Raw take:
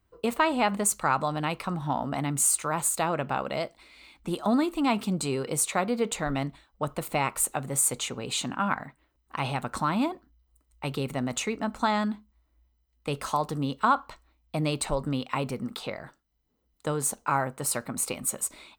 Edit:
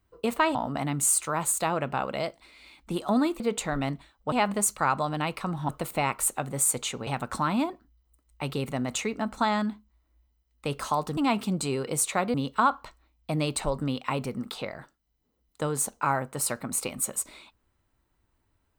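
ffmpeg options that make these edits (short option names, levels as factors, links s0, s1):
-filter_complex "[0:a]asplit=8[s0][s1][s2][s3][s4][s5][s6][s7];[s0]atrim=end=0.552[s8];[s1]atrim=start=1.918:end=4.772[s9];[s2]atrim=start=5.938:end=6.862[s10];[s3]atrim=start=0.548:end=1.922[s11];[s4]atrim=start=6.858:end=8.242[s12];[s5]atrim=start=9.488:end=13.592[s13];[s6]atrim=start=4.768:end=5.942[s14];[s7]atrim=start=13.588[s15];[s8][s9]acrossfade=d=0.004:c1=hsin:c2=hsin[s16];[s16][s10]acrossfade=d=0.004:c1=hsin:c2=hsin[s17];[s17][s11]acrossfade=d=0.004:c1=hsin:c2=hsin[s18];[s18][s12]acrossfade=d=0.004:c1=hsin:c2=hsin[s19];[s19][s13]acrossfade=d=0.004:c1=hsin:c2=hsin[s20];[s20][s14]acrossfade=d=0.004:c1=hsin:c2=hsin[s21];[s21][s15]acrossfade=d=0.004:c1=hsin:c2=hsin"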